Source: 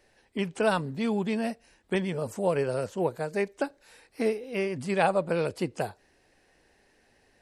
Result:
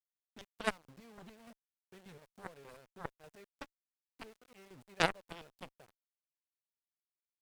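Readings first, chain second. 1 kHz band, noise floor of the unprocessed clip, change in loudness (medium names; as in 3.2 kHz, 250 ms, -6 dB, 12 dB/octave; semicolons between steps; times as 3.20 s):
-11.5 dB, -65 dBFS, -10.0 dB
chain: square tremolo 3.4 Hz, depth 65%, duty 40%; small samples zeroed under -36.5 dBFS; Chebyshev shaper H 3 -9 dB, 7 -45 dB, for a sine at -10 dBFS; trim +1 dB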